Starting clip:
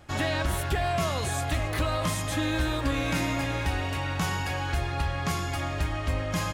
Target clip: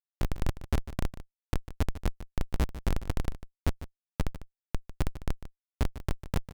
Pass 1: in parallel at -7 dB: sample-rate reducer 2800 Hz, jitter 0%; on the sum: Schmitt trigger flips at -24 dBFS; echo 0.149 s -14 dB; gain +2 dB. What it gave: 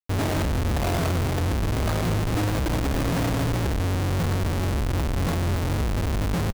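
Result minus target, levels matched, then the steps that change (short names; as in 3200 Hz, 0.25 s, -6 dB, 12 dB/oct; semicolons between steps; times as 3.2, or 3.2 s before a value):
Schmitt trigger: distortion -22 dB
change: Schmitt trigger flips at -15.5 dBFS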